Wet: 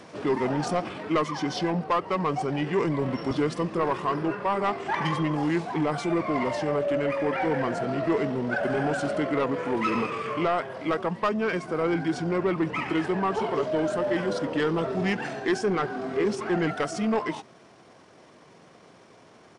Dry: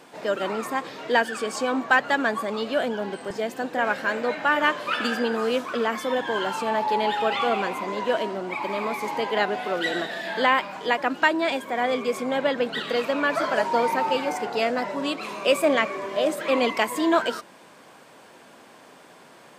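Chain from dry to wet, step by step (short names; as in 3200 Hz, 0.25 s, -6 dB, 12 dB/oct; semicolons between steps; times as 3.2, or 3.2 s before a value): pitch shift -7 st; vocal rider 0.5 s; soft clip -17 dBFS, distortion -15 dB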